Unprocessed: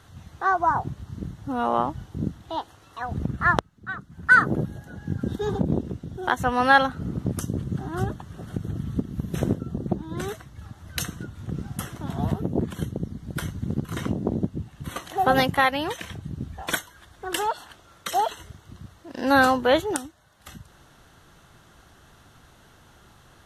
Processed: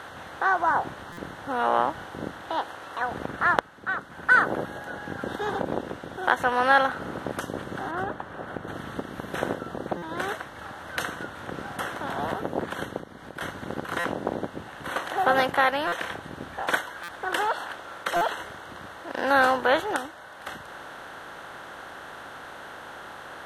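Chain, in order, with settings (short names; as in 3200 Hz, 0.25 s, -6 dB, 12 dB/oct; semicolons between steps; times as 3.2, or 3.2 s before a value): per-bin compression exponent 0.6; 7.91–8.68 high shelf 2800 Hz -11.5 dB; 12.98–13.41 compressor 6:1, threshold -28 dBFS, peak gain reduction 10.5 dB; tone controls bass -14 dB, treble -8 dB; stuck buffer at 1.12/9.97/13.99/15.87/17.03/18.16, samples 256, times 8; gain -4 dB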